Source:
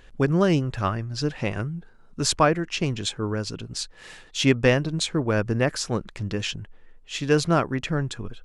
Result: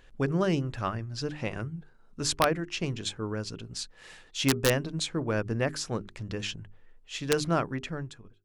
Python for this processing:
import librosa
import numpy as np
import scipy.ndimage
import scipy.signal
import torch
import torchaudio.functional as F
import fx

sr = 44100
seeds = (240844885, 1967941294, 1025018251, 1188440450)

y = fx.fade_out_tail(x, sr, length_s=0.74)
y = (np.mod(10.0 ** (6.5 / 20.0) * y + 1.0, 2.0) - 1.0) / 10.0 ** (6.5 / 20.0)
y = fx.hum_notches(y, sr, base_hz=50, count=8)
y = F.gain(torch.from_numpy(y), -5.5).numpy()